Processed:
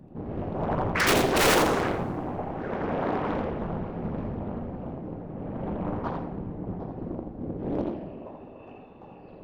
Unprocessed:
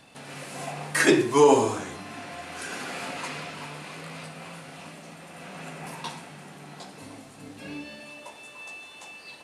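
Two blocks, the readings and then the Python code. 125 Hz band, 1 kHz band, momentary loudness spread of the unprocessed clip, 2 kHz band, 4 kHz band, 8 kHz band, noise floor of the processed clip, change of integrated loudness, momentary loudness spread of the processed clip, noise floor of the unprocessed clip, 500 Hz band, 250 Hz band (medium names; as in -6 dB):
+7.0 dB, +1.0 dB, 23 LU, 0.0 dB, +2.5 dB, -1.0 dB, -47 dBFS, -2.0 dB, 21 LU, -47 dBFS, -2.5 dB, +1.0 dB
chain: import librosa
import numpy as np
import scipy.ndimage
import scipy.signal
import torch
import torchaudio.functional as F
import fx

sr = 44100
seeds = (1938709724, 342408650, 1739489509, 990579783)

p1 = scipy.signal.sosfilt(scipy.signal.cheby1(3, 1.0, 5900.0, 'lowpass', fs=sr, output='sos'), x)
p2 = fx.env_lowpass(p1, sr, base_hz=320.0, full_db=-17.5)
p3 = fx.over_compress(p2, sr, threshold_db=-37.0, ratio=-1.0)
p4 = p2 + (p3 * librosa.db_to_amplitude(0.5))
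p5 = (np.mod(10.0 ** (11.0 / 20.0) * p4 + 1.0, 2.0) - 1.0) / 10.0 ** (11.0 / 20.0)
p6 = fx.whisperise(p5, sr, seeds[0])
p7 = np.clip(p6, -10.0 ** (-19.0 / 20.0), 10.0 ** (-19.0 / 20.0))
p8 = p7 + fx.echo_single(p7, sr, ms=84, db=-5.0, dry=0)
p9 = fx.rev_double_slope(p8, sr, seeds[1], early_s=0.55, late_s=1.7, knee_db=-18, drr_db=8.5)
y = fx.doppler_dist(p9, sr, depth_ms=0.98)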